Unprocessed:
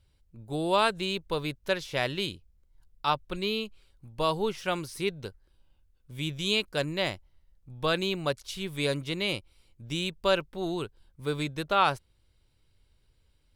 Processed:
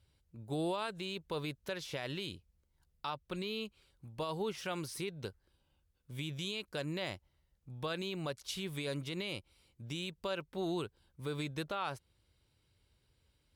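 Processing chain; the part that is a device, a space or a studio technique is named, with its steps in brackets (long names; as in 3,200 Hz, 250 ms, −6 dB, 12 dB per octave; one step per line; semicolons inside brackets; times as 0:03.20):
podcast mastering chain (high-pass filter 63 Hz; downward compressor 2.5 to 1, threshold −30 dBFS, peak gain reduction 8.5 dB; brickwall limiter −25.5 dBFS, peak gain reduction 7.5 dB; level −1.5 dB; MP3 128 kbit/s 48,000 Hz)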